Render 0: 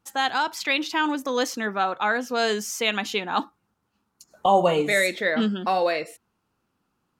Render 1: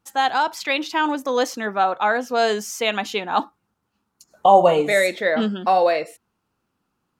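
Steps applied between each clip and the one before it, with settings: dynamic bell 680 Hz, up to +7 dB, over -35 dBFS, Q 1.1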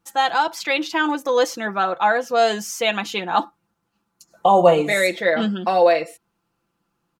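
comb 5.9 ms, depth 56%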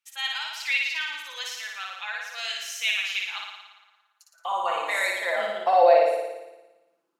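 flutter echo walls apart 9.8 m, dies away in 1.1 s; high-pass sweep 2.4 kHz -> 400 Hz, 3.67–6.55 s; trim -9 dB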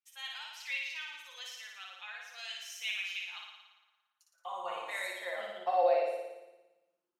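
feedback comb 180 Hz, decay 0.15 s, harmonics all, mix 80%; trim -4.5 dB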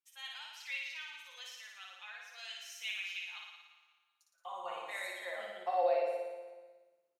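feedback delay 183 ms, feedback 47%, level -14 dB; trim -3.5 dB

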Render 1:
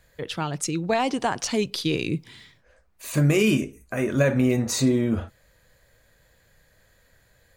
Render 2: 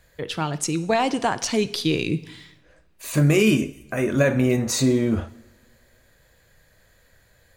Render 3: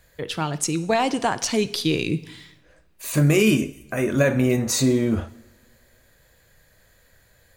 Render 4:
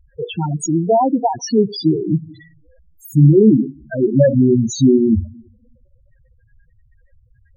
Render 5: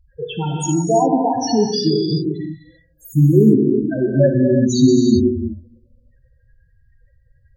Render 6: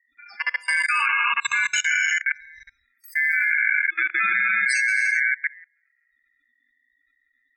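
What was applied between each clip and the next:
two-slope reverb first 0.76 s, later 2.1 s, from -19 dB, DRR 13.5 dB; trim +2 dB
treble shelf 8.9 kHz +5 dB
loudest bins only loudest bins 4; trim +9 dB
peaking EQ 4.6 kHz +8.5 dB 0.39 oct; gated-style reverb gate 410 ms flat, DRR 1 dB; trim -3 dB
ring modulator 1.9 kHz; level held to a coarse grid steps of 24 dB; trim +3 dB

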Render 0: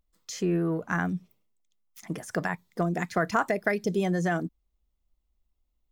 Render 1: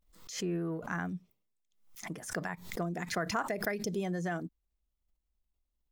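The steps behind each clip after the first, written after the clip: swell ahead of each attack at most 100 dB/s; trim -8 dB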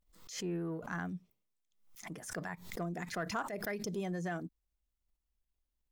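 in parallel at -4.5 dB: saturation -29 dBFS, distortion -15 dB; on the sum: attacks held to a fixed rise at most 160 dB/s; trim -6.5 dB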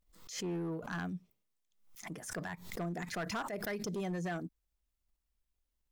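overload inside the chain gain 33.5 dB; trim +1 dB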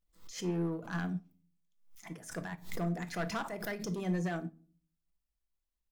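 simulated room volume 390 m³, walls furnished, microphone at 0.71 m; upward expansion 1.5:1, over -49 dBFS; trim +2.5 dB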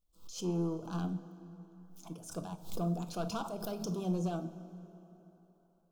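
Butterworth band-stop 1.9 kHz, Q 1.2; plate-style reverb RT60 3.8 s, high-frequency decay 0.65×, DRR 13 dB

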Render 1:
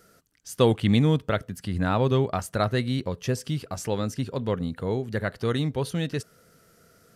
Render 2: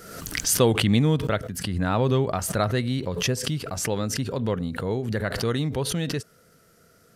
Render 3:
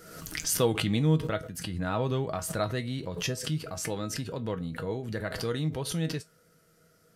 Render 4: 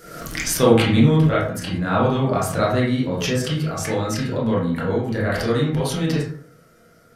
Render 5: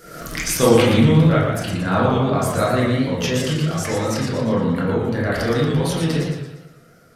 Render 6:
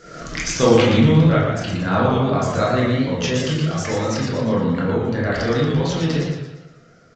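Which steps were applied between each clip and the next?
swell ahead of each attack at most 49 dB/s
feedback comb 160 Hz, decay 0.17 s, harmonics all, mix 70%
reverberation RT60 0.55 s, pre-delay 18 ms, DRR -6.5 dB; trim +4.5 dB
modulated delay 117 ms, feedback 46%, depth 148 cents, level -5 dB
resampled via 16 kHz

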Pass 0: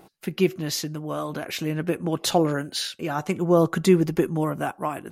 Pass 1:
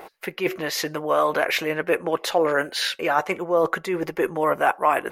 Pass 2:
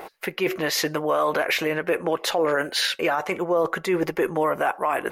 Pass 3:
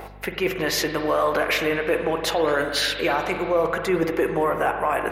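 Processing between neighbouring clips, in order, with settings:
treble shelf 4.3 kHz +5.5 dB; reverse; compression 12:1, threshold -27 dBFS, peak gain reduction 16 dB; reverse; graphic EQ 125/250/500/1000/2000/8000 Hz -11/-5/+10/+7/+11/-5 dB; trim +3.5 dB
peak limiter -16 dBFS, peak gain reduction 9.5 dB; trim +3 dB
on a send at -5.5 dB: reverberation RT60 1.9 s, pre-delay 43 ms; on the sum: hum 50 Hz, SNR 21 dB

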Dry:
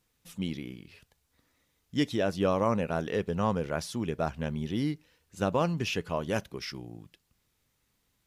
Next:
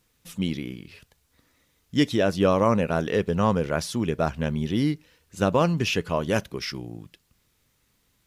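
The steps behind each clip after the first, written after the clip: peaking EQ 790 Hz -2.5 dB 0.41 oct; trim +6.5 dB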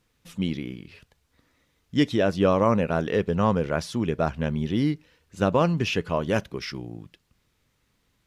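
treble shelf 6.6 kHz -10.5 dB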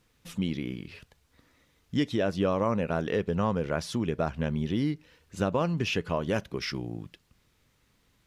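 compression 2:1, threshold -31 dBFS, peak gain reduction 9 dB; trim +2 dB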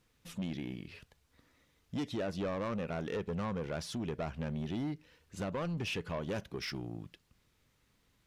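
saturation -26.5 dBFS, distortion -10 dB; trim -4.5 dB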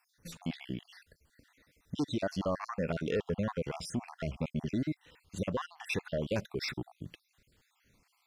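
random holes in the spectrogram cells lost 52%; trim +5.5 dB

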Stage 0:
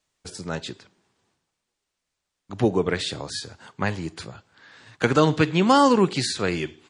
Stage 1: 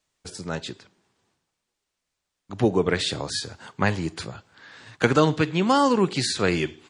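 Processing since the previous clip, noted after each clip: gain riding within 3 dB 0.5 s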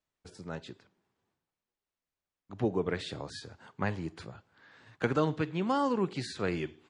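treble shelf 3.5 kHz -11 dB; trim -9 dB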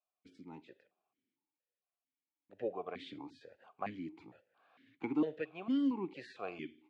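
stepped vowel filter 4.4 Hz; trim +4 dB

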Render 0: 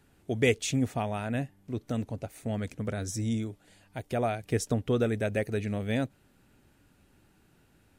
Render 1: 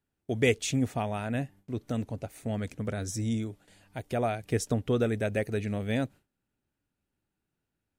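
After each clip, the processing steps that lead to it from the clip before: gate with hold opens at -51 dBFS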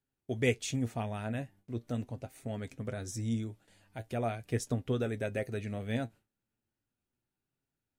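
flange 0.39 Hz, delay 7.3 ms, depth 2 ms, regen +61%; trim -1 dB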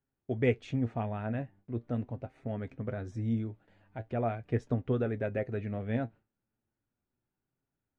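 low-pass 1.8 kHz 12 dB/octave; trim +2 dB

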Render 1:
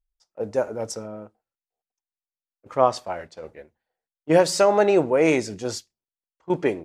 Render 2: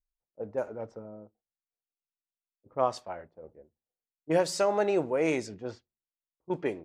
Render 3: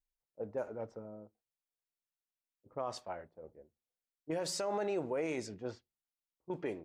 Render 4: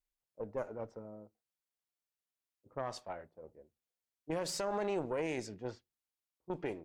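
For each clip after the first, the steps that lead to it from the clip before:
level-controlled noise filter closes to 380 Hz, open at -17.5 dBFS; trim -8.5 dB
peak limiter -23.5 dBFS, peak gain reduction 11 dB; trim -3.5 dB
Chebyshev shaper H 2 -13 dB, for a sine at -27 dBFS; trim -1 dB

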